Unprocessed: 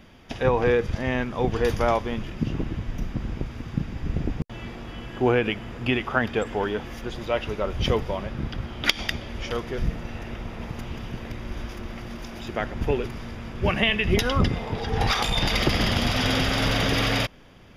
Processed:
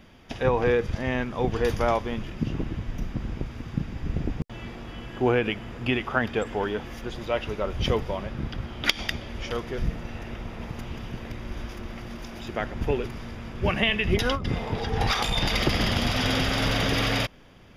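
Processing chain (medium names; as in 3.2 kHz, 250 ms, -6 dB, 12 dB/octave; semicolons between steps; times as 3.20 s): 14.17–14.88 s: compressor with a negative ratio -23 dBFS, ratio -0.5; trim -1.5 dB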